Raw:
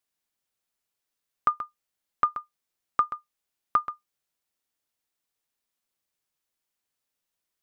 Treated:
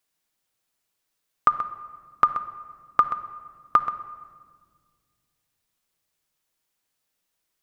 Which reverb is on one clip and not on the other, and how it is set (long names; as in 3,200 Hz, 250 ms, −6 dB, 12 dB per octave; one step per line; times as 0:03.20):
rectangular room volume 2,400 cubic metres, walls mixed, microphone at 0.59 metres
level +5.5 dB